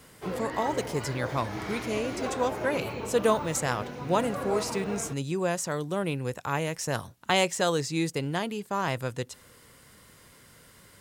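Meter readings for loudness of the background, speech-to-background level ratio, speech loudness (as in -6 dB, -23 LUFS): -36.0 LUFS, 6.0 dB, -30.0 LUFS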